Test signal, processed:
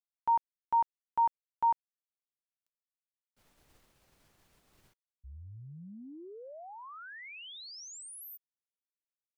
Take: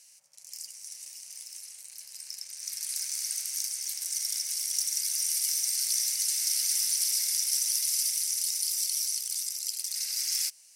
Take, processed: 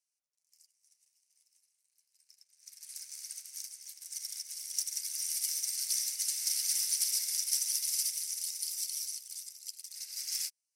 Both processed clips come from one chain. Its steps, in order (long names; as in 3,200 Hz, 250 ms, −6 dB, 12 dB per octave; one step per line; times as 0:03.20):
expander for the loud parts 2.5 to 1, over −46 dBFS
level −1 dB